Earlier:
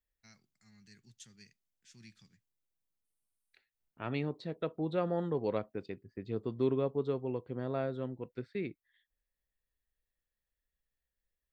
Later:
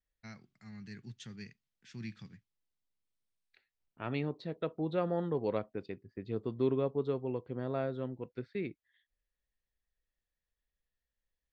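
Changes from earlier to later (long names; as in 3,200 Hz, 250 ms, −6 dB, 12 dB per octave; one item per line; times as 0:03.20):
first voice: remove first-order pre-emphasis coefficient 0.8
master: add low-pass filter 5,800 Hz 12 dB per octave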